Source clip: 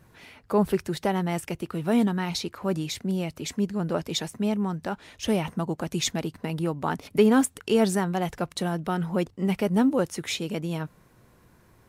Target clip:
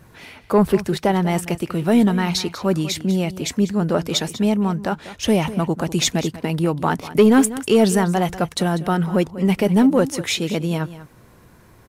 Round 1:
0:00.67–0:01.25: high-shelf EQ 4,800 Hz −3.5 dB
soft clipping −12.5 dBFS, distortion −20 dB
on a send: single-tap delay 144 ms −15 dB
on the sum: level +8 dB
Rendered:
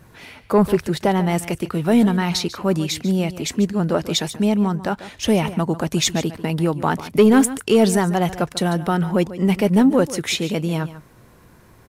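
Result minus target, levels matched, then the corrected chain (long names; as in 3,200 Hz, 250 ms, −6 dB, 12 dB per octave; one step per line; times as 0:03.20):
echo 50 ms early
0:00.67–0:01.25: high-shelf EQ 4,800 Hz −3.5 dB
soft clipping −12.5 dBFS, distortion −20 dB
on a send: single-tap delay 194 ms −15 dB
on the sum: level +8 dB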